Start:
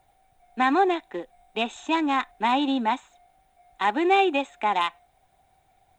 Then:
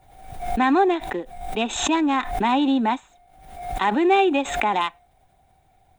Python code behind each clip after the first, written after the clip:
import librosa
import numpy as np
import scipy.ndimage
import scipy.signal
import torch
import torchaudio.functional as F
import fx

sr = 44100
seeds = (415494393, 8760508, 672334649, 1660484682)

y = fx.low_shelf(x, sr, hz=380.0, db=7.5)
y = fx.pre_swell(y, sr, db_per_s=64.0)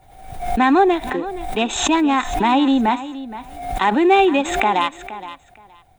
y = fx.echo_feedback(x, sr, ms=470, feedback_pct=18, wet_db=-14.5)
y = F.gain(torch.from_numpy(y), 4.0).numpy()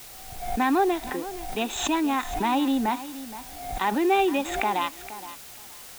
y = fx.quant_dither(x, sr, seeds[0], bits=6, dither='triangular')
y = F.gain(torch.from_numpy(y), -8.0).numpy()